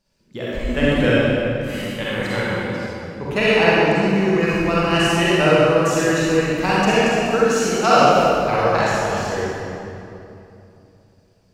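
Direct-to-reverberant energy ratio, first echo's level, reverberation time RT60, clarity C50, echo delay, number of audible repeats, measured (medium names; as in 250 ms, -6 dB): -8.5 dB, no echo, 2.9 s, -6.5 dB, no echo, no echo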